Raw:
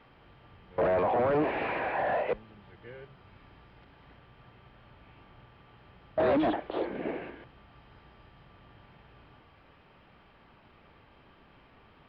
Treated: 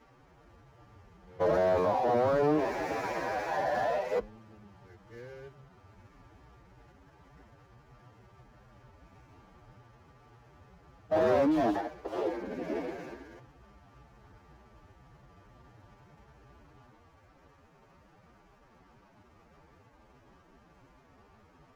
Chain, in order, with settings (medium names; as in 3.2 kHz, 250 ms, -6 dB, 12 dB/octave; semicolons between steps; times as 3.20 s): median filter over 15 samples; time stretch by phase-locked vocoder 1.8×